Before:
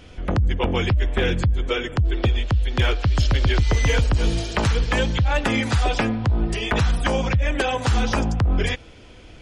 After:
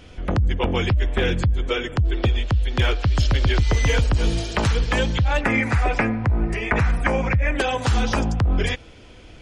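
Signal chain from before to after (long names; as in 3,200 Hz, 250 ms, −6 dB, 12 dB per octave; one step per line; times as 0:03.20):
0:05.41–0:07.56: high shelf with overshoot 2,700 Hz −6.5 dB, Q 3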